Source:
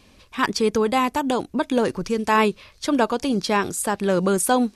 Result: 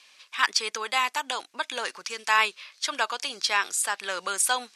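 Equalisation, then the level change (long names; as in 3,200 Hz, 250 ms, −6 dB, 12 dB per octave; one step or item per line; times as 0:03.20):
high-pass filter 1,500 Hz 12 dB per octave
low-pass filter 9,100 Hz 12 dB per octave
+3.5 dB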